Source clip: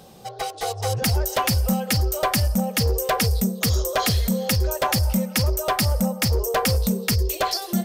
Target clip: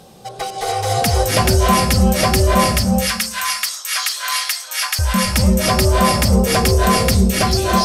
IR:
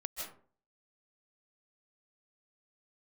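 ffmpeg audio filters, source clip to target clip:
-filter_complex "[0:a]asettb=1/sr,asplit=3[a][b][c];[a]atrim=end=2.754[d];[b]atrim=start=2.75:end=4.99,asetpts=PTS-STARTPTS,afade=t=in:d=0.004:c=qsin,afade=t=out:st=2.236:d=0.004:c=qsin,highpass=f=1.2k:w=0.5412,highpass=f=1.2k:w=1.3066[e];[c]atrim=start=4.986[f];[d][e]acrossfade=d=0.004:c1=hsin:c2=qsin[g];[g][f]acrossfade=d=0.004:c1=qsin:c2=hsin[h];[1:a]atrim=start_sample=2205,asetrate=23814,aresample=44100[i];[h][i]afir=irnorm=-1:irlink=0,volume=3.5dB"

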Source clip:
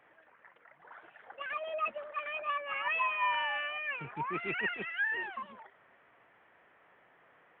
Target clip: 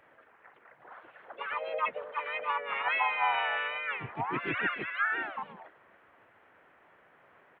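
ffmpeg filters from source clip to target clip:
-filter_complex "[0:a]asplit=4[a][b][c][d];[b]asetrate=33038,aresample=44100,atempo=1.33484,volume=-5dB[e];[c]asetrate=37084,aresample=44100,atempo=1.18921,volume=-3dB[f];[d]asetrate=55563,aresample=44100,atempo=0.793701,volume=-14dB[g];[a][e][f][g]amix=inputs=4:normalize=0"

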